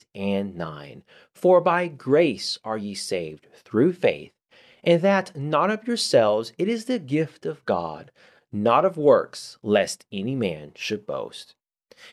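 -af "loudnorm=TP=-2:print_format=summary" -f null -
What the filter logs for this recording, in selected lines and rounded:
Input Integrated:    -23.7 LUFS
Input True Peak:      -4.7 dBTP
Input LRA:             5.5 LU
Input Threshold:     -34.7 LUFS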